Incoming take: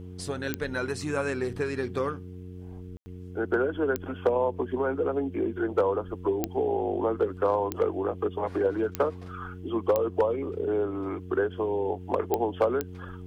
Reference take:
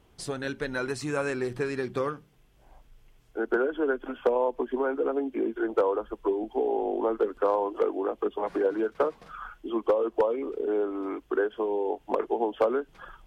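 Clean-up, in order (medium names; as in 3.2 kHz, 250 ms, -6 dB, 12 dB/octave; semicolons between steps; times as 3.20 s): de-click; de-hum 90.9 Hz, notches 5; room tone fill 2.97–3.06 s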